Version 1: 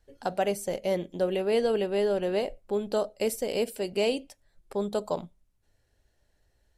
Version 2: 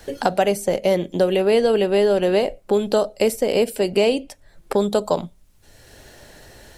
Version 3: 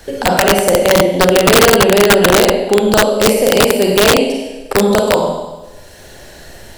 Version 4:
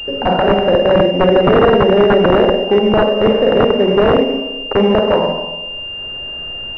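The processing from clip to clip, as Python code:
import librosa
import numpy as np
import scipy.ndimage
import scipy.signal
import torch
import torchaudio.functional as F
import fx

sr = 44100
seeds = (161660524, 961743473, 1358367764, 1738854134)

y1 = fx.band_squash(x, sr, depth_pct=70)
y1 = F.gain(torch.from_numpy(y1), 9.0).numpy()
y2 = fx.rev_schroeder(y1, sr, rt60_s=1.2, comb_ms=33, drr_db=-1.5)
y2 = (np.mod(10.0 ** (7.0 / 20.0) * y2 + 1.0, 2.0) - 1.0) / 10.0 ** (7.0 / 20.0)
y2 = F.gain(torch.from_numpy(y2), 5.0).numpy()
y3 = fx.pwm(y2, sr, carrier_hz=2800.0)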